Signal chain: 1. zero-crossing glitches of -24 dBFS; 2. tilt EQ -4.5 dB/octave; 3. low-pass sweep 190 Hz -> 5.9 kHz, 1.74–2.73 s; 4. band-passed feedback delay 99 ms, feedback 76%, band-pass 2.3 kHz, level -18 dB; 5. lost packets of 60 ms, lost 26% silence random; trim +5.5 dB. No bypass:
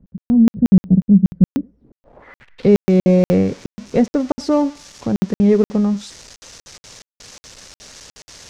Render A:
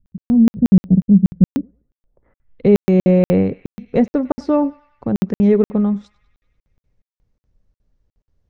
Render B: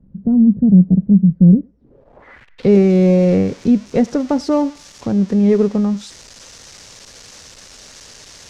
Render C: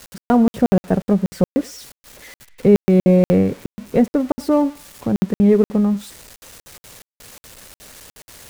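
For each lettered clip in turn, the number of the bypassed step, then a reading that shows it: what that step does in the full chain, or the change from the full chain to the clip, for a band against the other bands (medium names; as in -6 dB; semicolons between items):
1, distortion -6 dB; 5, 125 Hz band +2.5 dB; 3, 1 kHz band +4.5 dB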